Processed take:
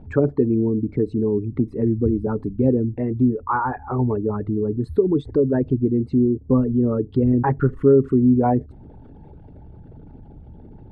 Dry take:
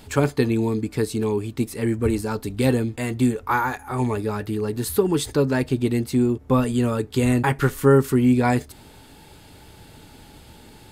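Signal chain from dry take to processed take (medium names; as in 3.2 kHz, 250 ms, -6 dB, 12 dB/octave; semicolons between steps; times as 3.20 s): resonances exaggerated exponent 2; low-pass 1.1 kHz 12 dB/octave; in parallel at -2 dB: compression, threshold -28 dBFS, peak gain reduction 16 dB; on the sum: hum notches 50/100 Hz; 1.52–2.27 s: three bands compressed up and down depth 40%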